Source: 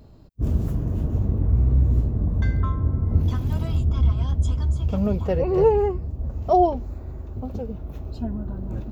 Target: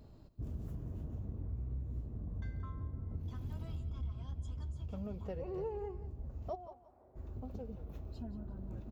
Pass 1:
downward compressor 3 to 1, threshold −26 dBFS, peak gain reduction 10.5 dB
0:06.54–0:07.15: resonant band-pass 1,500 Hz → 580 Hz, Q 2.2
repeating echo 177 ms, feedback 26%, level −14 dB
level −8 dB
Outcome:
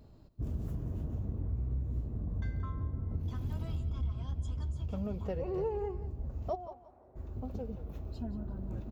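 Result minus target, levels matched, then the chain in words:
downward compressor: peak gain reduction −5.5 dB
downward compressor 3 to 1, threshold −34.5 dBFS, peak gain reduction 16.5 dB
0:06.54–0:07.15: resonant band-pass 1,500 Hz → 580 Hz, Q 2.2
repeating echo 177 ms, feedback 26%, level −14 dB
level −8 dB

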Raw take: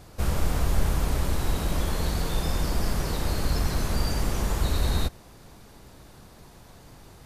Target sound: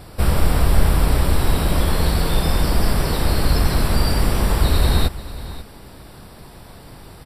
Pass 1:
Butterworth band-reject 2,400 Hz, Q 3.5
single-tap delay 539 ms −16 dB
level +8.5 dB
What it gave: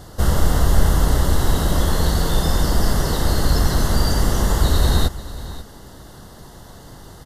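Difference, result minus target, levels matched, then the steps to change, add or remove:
8,000 Hz band +2.5 dB
change: Butterworth band-reject 6,500 Hz, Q 3.5

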